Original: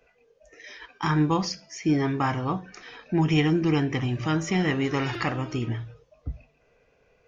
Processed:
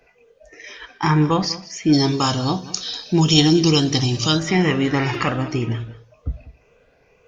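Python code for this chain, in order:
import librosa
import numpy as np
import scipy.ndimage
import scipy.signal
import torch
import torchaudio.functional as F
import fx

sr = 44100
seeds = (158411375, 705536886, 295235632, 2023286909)

y = fx.spec_ripple(x, sr, per_octave=0.77, drift_hz=2.0, depth_db=6)
y = fx.high_shelf_res(y, sr, hz=3000.0, db=13.5, q=3.0, at=(1.92, 4.38), fade=0.02)
y = y + 10.0 ** (-17.0 / 20.0) * np.pad(y, (int(194 * sr / 1000.0), 0))[:len(y)]
y = y * librosa.db_to_amplitude(6.0)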